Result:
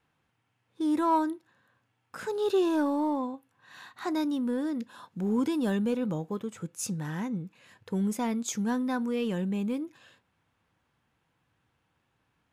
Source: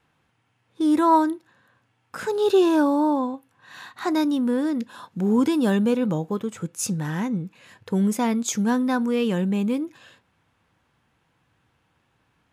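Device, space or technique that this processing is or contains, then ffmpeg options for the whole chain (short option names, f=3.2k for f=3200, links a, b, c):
parallel distortion: -filter_complex "[0:a]asplit=2[a][b];[b]asoftclip=type=hard:threshold=-20dB,volume=-14dB[c];[a][c]amix=inputs=2:normalize=0,volume=-8.5dB"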